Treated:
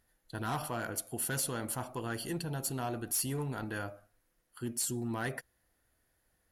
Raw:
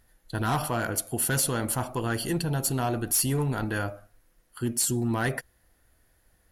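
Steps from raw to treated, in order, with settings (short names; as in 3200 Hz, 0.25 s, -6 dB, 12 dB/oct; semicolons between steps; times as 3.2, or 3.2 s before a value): low shelf 76 Hz -8 dB; gain -8 dB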